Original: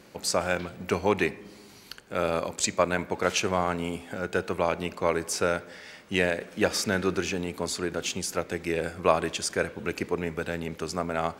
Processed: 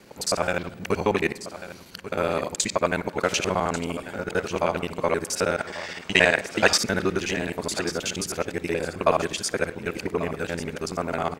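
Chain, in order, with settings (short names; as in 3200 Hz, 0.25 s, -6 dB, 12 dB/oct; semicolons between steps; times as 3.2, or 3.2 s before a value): local time reversal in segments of 53 ms; spectral gain 5.58–6.77, 610–8700 Hz +8 dB; on a send: echo 1.141 s -13.5 dB; on the sum: gain +2 dB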